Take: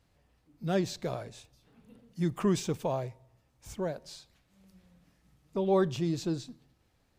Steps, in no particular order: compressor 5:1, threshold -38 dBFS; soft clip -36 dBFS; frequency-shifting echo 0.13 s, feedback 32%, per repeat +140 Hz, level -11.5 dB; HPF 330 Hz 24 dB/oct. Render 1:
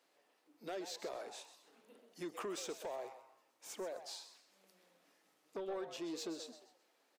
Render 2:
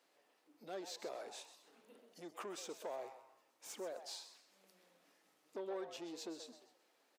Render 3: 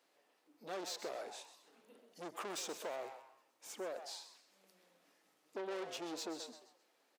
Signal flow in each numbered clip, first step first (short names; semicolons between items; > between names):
HPF > compressor > soft clip > frequency-shifting echo; compressor > soft clip > HPF > frequency-shifting echo; soft clip > HPF > frequency-shifting echo > compressor